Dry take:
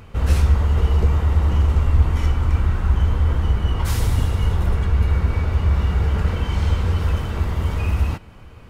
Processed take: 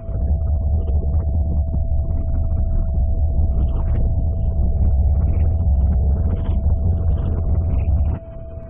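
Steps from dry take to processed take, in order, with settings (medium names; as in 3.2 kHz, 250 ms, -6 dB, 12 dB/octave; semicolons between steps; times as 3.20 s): spectral gate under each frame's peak -25 dB strong; bass shelf 410 Hz +7.5 dB; de-hum 286.2 Hz, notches 29; in parallel at -3 dB: compression, threshold -26 dBFS, peak gain reduction 22 dB; on the sum: peak limiter -11.5 dBFS, peak gain reduction 14.5 dB; rotary cabinet horn 5.5 Hz; whistle 660 Hz -37 dBFS; distance through air 400 m; reverse echo 61 ms -7 dB; loudspeaker Doppler distortion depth 0.5 ms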